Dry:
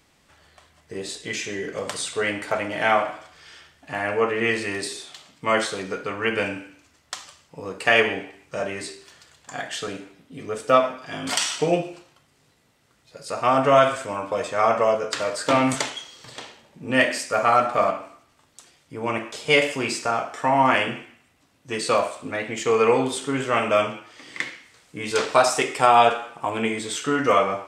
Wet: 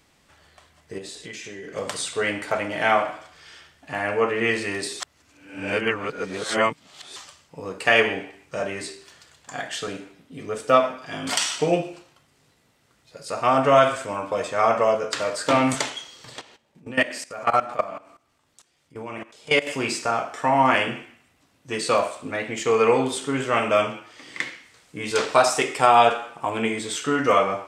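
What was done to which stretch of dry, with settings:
0.98–1.76 s: compression, threshold -34 dBFS
5.00–7.16 s: reverse
16.41–19.67 s: level held to a coarse grid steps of 17 dB

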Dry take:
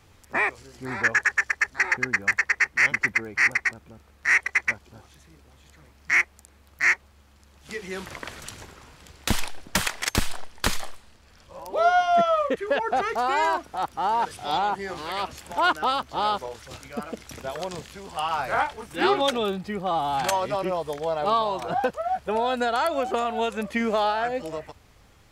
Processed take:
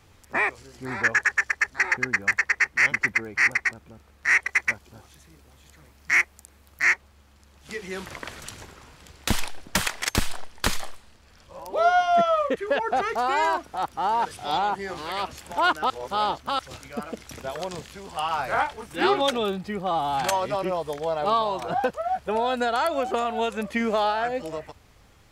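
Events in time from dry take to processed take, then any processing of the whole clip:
4.49–6.83 s: treble shelf 8.2 kHz +6.5 dB
15.90–16.59 s: reverse

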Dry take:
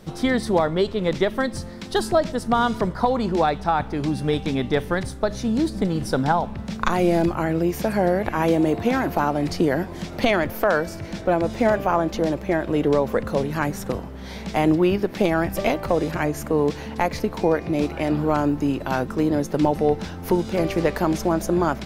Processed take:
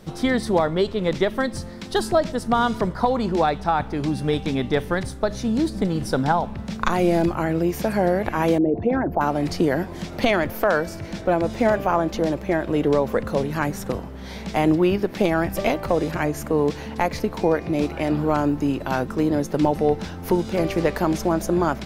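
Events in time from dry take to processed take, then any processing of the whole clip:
8.58–9.21 s: resonances exaggerated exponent 2

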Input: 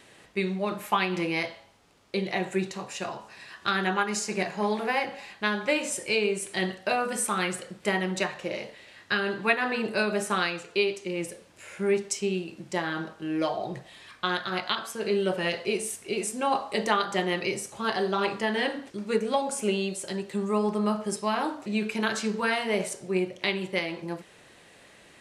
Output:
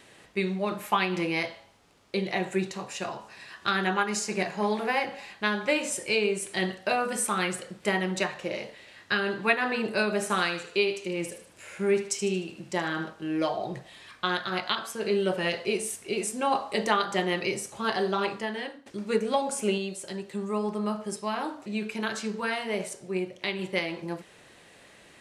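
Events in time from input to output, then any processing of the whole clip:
10.13–13.10 s: thinning echo 76 ms, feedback 44%, high-pass 900 Hz, level -10 dB
18.10–18.86 s: fade out, to -18 dB
19.78–23.59 s: gain -3.5 dB

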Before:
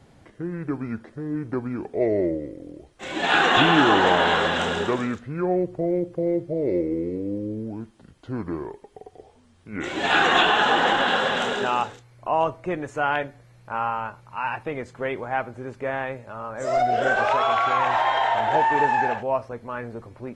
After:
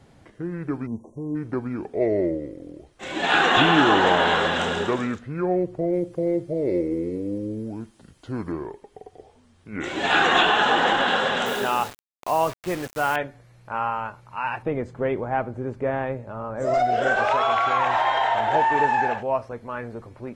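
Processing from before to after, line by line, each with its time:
0.87–1.35 s: spectral selection erased 1.1–5.6 kHz
5.93–8.52 s: treble shelf 4.7 kHz +9 dB
11.46–13.16 s: word length cut 6-bit, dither none
14.62–16.74 s: tilt shelf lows +6.5 dB

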